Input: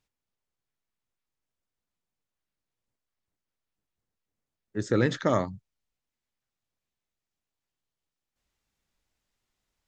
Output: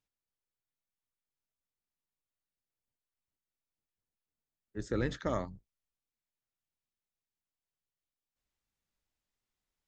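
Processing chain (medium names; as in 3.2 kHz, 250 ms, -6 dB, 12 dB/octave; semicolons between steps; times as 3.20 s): octave divider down 2 oct, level -6 dB; trim -9 dB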